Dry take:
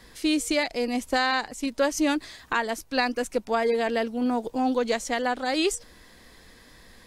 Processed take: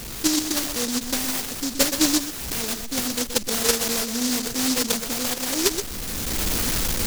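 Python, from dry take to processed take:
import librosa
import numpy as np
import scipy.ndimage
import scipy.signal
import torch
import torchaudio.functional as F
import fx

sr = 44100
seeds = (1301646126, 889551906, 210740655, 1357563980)

p1 = fx.delta_mod(x, sr, bps=16000, step_db=-32.5)
p2 = fx.recorder_agc(p1, sr, target_db=-21.0, rise_db_per_s=19.0, max_gain_db=30)
p3 = fx.spec_gate(p2, sr, threshold_db=-25, keep='strong')
p4 = fx.level_steps(p3, sr, step_db=22)
p5 = p3 + F.gain(torch.from_numpy(p4), 0.0).numpy()
p6 = p5 + 10.0 ** (-7.5 / 20.0) * np.pad(p5, (int(124 * sr / 1000.0), 0))[:len(p5)]
y = fx.noise_mod_delay(p6, sr, seeds[0], noise_hz=5400.0, depth_ms=0.4)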